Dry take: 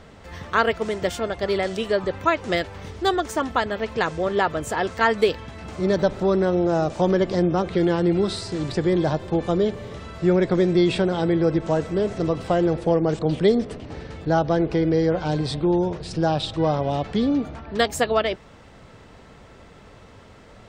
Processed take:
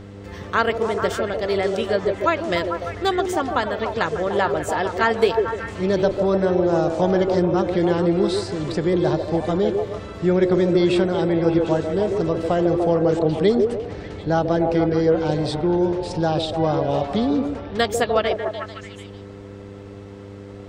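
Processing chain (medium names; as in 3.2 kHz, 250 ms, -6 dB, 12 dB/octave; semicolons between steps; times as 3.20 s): mains buzz 100 Hz, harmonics 5, -40 dBFS; repeats whose band climbs or falls 148 ms, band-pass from 430 Hz, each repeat 0.7 oct, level -1.5 dB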